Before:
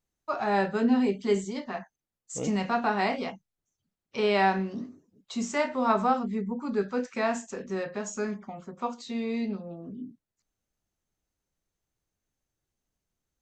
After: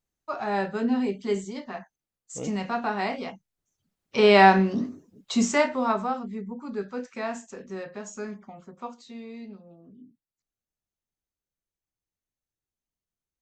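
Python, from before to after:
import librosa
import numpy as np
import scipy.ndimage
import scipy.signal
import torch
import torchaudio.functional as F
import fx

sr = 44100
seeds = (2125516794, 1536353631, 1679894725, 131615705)

y = fx.gain(x, sr, db=fx.line((3.23, -1.5), (4.31, 8.5), (5.44, 8.5), (6.07, -4.0), (8.72, -4.0), (9.34, -10.5)))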